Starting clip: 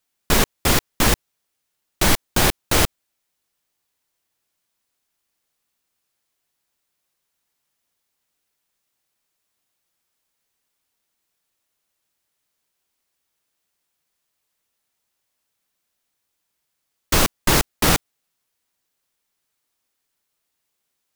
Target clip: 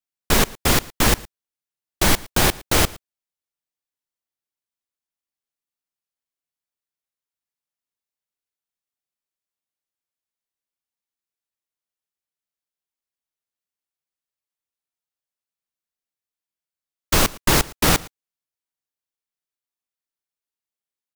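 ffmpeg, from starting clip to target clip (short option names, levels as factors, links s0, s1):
-af "aecho=1:1:113:0.0794,agate=range=0.141:threshold=0.0316:ratio=16:detection=peak"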